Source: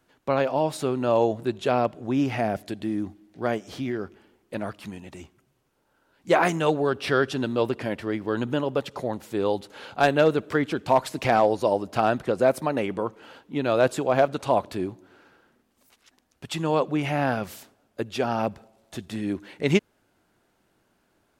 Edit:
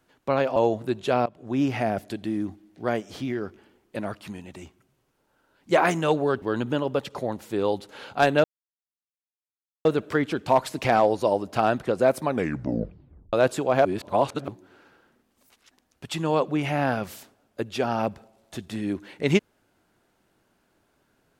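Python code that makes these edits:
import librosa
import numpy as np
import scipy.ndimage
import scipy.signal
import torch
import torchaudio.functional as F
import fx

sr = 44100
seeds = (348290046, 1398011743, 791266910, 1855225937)

y = fx.edit(x, sr, fx.cut(start_s=0.56, length_s=0.58),
    fx.fade_in_from(start_s=1.84, length_s=0.33, floor_db=-21.0),
    fx.cut(start_s=7.0, length_s=1.23),
    fx.insert_silence(at_s=10.25, length_s=1.41),
    fx.tape_stop(start_s=12.64, length_s=1.09),
    fx.reverse_span(start_s=14.25, length_s=0.63), tone=tone)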